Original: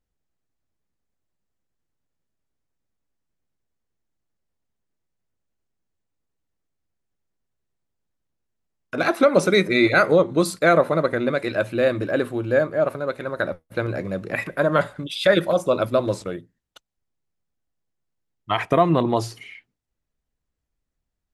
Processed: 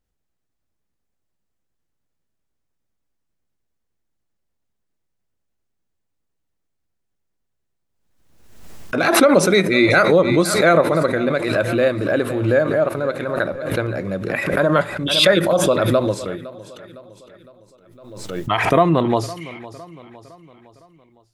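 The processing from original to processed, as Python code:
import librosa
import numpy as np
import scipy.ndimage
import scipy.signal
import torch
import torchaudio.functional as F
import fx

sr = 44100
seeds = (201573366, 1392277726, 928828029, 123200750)

y = fx.echo_feedback(x, sr, ms=509, feedback_pct=49, wet_db=-18)
y = fx.pre_swell(y, sr, db_per_s=50.0)
y = F.gain(torch.from_numpy(y), 2.0).numpy()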